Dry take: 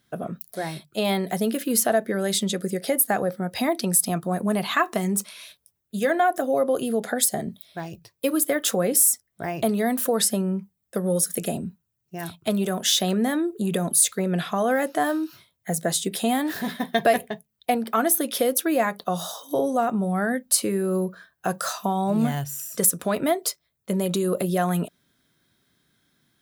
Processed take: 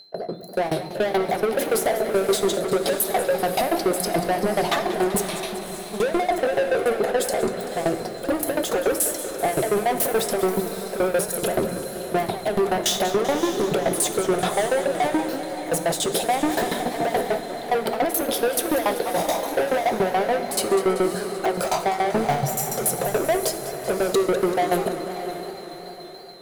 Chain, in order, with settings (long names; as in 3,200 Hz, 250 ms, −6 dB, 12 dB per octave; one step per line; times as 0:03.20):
high-pass filter 85 Hz 24 dB per octave
flat-topped bell 550 Hz +16 dB
mains-hum notches 60/120/180/240 Hz
brickwall limiter −15.5 dBFS, peak gain reduction 21.5 dB
automatic gain control gain up to 12.5 dB
steady tone 4,100 Hz −42 dBFS
soft clipping −16 dBFS, distortion −8 dB
shaped tremolo saw down 7 Hz, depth 100%
feedback delay with all-pass diffusion 588 ms, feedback 42%, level −10.5 dB
convolution reverb RT60 1.0 s, pre-delay 4 ms, DRR 10 dB
feedback echo with a swinging delay time 193 ms, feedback 70%, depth 220 cents, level −13 dB